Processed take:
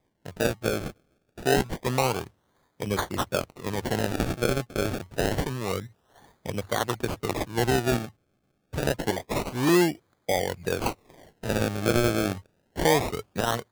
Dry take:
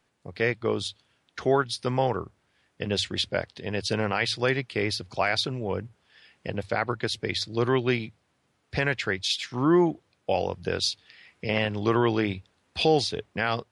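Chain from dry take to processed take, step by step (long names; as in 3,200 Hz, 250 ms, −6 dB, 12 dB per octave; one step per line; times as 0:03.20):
0:09.12–0:09.69: all-pass dispersion highs, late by 79 ms, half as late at 1,700 Hz
sample-and-hold swept by an LFO 31×, swing 100% 0.27 Hz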